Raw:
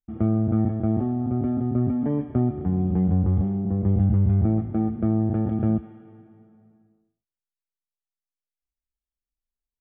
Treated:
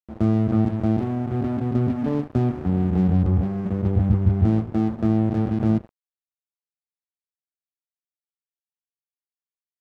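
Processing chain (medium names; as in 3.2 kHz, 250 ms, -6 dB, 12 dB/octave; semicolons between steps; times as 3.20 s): hum notches 50/100/150/200/250/300/350 Hz; crossover distortion -37.5 dBFS; trim +3.5 dB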